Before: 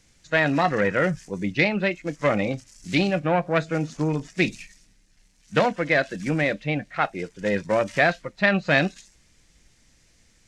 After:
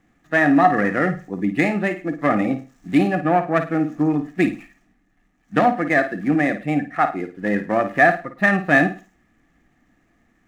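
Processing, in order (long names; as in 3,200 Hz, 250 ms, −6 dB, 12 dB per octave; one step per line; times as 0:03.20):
running median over 9 samples
hollow resonant body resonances 280/730/1,200/1,700 Hz, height 16 dB, ringing for 20 ms
on a send: flutter between parallel walls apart 9.2 metres, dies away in 0.32 s
on the sum: level −7 dB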